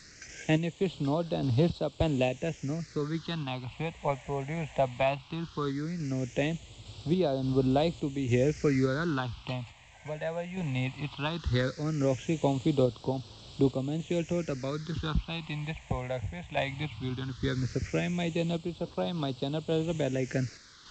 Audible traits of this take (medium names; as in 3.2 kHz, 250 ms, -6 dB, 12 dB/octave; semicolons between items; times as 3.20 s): a quantiser's noise floor 8-bit, dither triangular; random-step tremolo; phasing stages 6, 0.17 Hz, lowest notch 340–1900 Hz; G.722